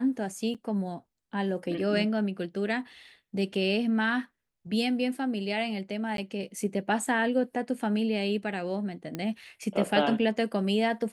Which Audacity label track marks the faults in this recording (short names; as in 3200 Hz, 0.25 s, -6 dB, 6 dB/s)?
0.540000	0.550000	gap 7 ms
6.170000	6.180000	gap
9.150000	9.150000	pop -19 dBFS